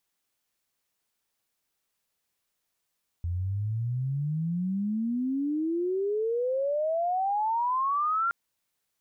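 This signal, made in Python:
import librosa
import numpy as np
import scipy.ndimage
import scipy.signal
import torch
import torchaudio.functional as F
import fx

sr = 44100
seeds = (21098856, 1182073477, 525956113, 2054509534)

y = fx.chirp(sr, length_s=5.07, from_hz=84.0, to_hz=1400.0, law='logarithmic', from_db=-27.0, to_db=-23.5)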